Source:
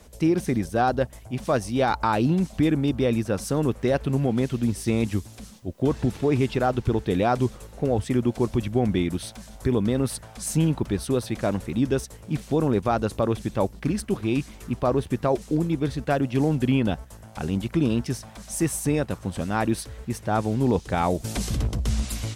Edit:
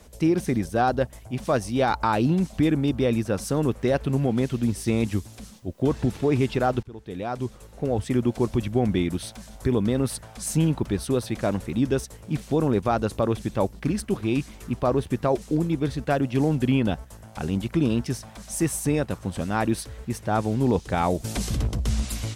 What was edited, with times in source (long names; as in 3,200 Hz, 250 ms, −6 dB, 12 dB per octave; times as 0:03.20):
0:06.83–0:08.18: fade in, from −23 dB